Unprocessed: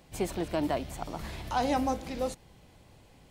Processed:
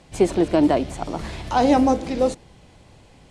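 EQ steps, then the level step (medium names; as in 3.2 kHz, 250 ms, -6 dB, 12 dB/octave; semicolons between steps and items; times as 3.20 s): dynamic bell 350 Hz, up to +8 dB, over -44 dBFS, Q 0.86; low-pass 9.7 kHz 24 dB/octave; +7.0 dB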